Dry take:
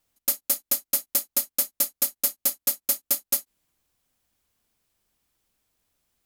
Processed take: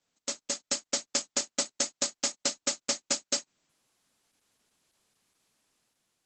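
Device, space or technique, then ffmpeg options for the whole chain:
video call: -af "highpass=f=130:w=0.5412,highpass=f=130:w=1.3066,dynaudnorm=f=200:g=7:m=5dB" -ar 48000 -c:a libopus -b:a 12k

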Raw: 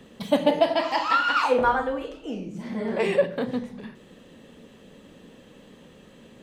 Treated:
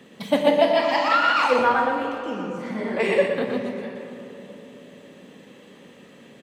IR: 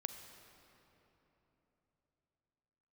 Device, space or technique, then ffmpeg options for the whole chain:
PA in a hall: -filter_complex "[0:a]highpass=150,equalizer=f=2.1k:t=o:w=0.49:g=5,aecho=1:1:121:0.562[a];[1:a]atrim=start_sample=2205[b];[a][b]afir=irnorm=-1:irlink=0,volume=3dB"

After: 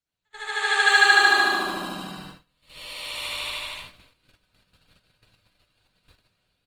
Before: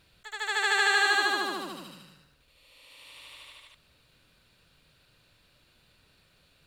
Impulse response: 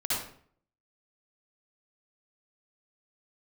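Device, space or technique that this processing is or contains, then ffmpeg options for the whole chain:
speakerphone in a meeting room: -filter_complex "[1:a]atrim=start_sample=2205[a];[0:a][a]afir=irnorm=-1:irlink=0,asplit=2[b][c];[c]adelay=370,highpass=300,lowpass=3.4k,asoftclip=type=hard:threshold=-13dB,volume=-16dB[d];[b][d]amix=inputs=2:normalize=0,dynaudnorm=f=140:g=9:m=15dB,agate=range=-25dB:threshold=-37dB:ratio=16:detection=peak,volume=-4.5dB" -ar 48000 -c:a libopus -b:a 24k

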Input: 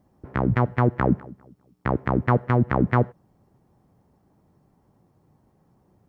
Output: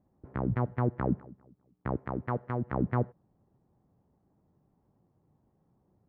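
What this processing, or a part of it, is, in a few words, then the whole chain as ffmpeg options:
through cloth: -filter_complex "[0:a]highshelf=f=2.1k:g=-14,asettb=1/sr,asplit=3[a][b][c];[a]atrim=end=1.994[d];[b]atrim=start=1.99:end=2.73,asetpts=PTS-STARTPTS,afade=t=in:d=0.004:c=qsin,afade=t=out:st=0.736:d=0.004:c=qsin,lowshelf=f=390:g=-6[e];[c]atrim=start=2.726[f];[d][e]acrossfade=d=0.004:c1=hsin:c2=qsin[g];[g][f]acrossfade=d=0.004:c1=qsin:c2=hsin,volume=-8dB"

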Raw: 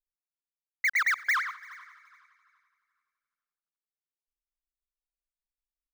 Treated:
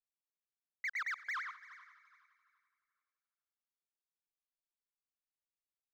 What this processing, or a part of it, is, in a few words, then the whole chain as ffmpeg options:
DJ mixer with the lows and highs turned down: -filter_complex "[0:a]acrossover=split=220 7200:gain=0.251 1 0.178[a][b][c];[a][b][c]amix=inputs=3:normalize=0,alimiter=limit=-24dB:level=0:latency=1:release=177,volume=-9dB"

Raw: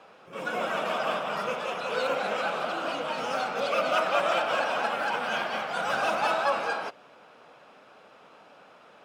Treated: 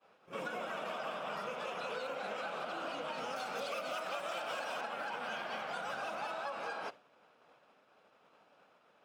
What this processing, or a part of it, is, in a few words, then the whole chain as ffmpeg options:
serial compression, peaks first: -filter_complex "[0:a]acompressor=threshold=-34dB:ratio=6,acompressor=threshold=-41dB:ratio=2,agate=range=-33dB:threshold=-43dB:ratio=3:detection=peak,asettb=1/sr,asplit=3[a][b][c];[a]atrim=end=3.364[d];[b]atrim=start=3.36:end=4.81,asetpts=PTS-STARTPTS,afade=t=in:d=0.004:c=qsin,afade=t=out:st=1.446:d=0.004:c=qsin,highshelf=f=5.5k:g=11.5[e];[c]atrim=start=4.806[f];[d][e]acrossfade=d=0.004:c1=hsin:c2=qsin[g];[g][f]acrossfade=d=0.004:c1=qsin:c2=hsin,volume=1dB"

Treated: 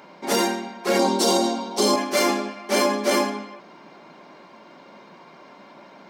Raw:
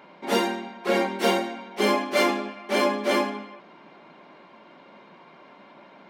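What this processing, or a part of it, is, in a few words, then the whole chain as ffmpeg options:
over-bright horn tweeter: -filter_complex "[0:a]asettb=1/sr,asplit=3[a][b][c];[a]atrim=end=0.994[d];[b]atrim=start=0.99:end=1.96,asetpts=PTS-STARTPTS,afade=t=in:d=0.004:c=qsin,afade=t=out:st=0.966:d=0.004:c=qsin,equalizer=f=125:t=o:w=1:g=-6,equalizer=f=250:t=o:w=1:g=9,equalizer=f=500:t=o:w=1:g=4,equalizer=f=1k:t=o:w=1:g=7,equalizer=f=2k:t=o:w=1:g=-10,equalizer=f=4k:t=o:w=1:g=10,equalizer=f=8k:t=o:w=1:g=7[e];[c]atrim=start=1.956[f];[d][e]acrossfade=d=0.004:c1=hsin:c2=qsin[g];[g][f]acrossfade=d=0.004:c1=qsin:c2=hsin,highshelf=f=4.2k:t=q:w=1.5:g=7,alimiter=limit=-13.5dB:level=0:latency=1:release=46,volume=3.5dB"

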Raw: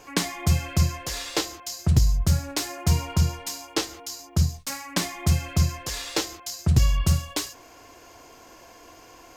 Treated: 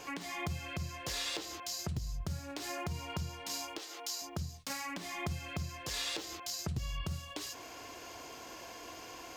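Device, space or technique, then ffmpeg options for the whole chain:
broadcast voice chain: -filter_complex "[0:a]highpass=f=72:p=1,deesser=0.65,acompressor=threshold=-36dB:ratio=4,equalizer=f=3.4k:t=o:w=1.3:g=4.5,alimiter=level_in=2dB:limit=-24dB:level=0:latency=1:release=164,volume=-2dB,asettb=1/sr,asplit=3[a][b][c];[a]atrim=end=3.784[d];[b]atrim=start=3.78:end=4.22,asetpts=PTS-STARTPTS,afade=t=in:d=0.004:c=qsin,afade=t=out:st=0.436:d=0.004:c=qsin,highpass=430[e];[c]atrim=start=4.216[f];[d][e]acrossfade=d=0.004:c1=hsin:c2=qsin[g];[g][f]acrossfade=d=0.004:c1=qsin:c2=hsin"

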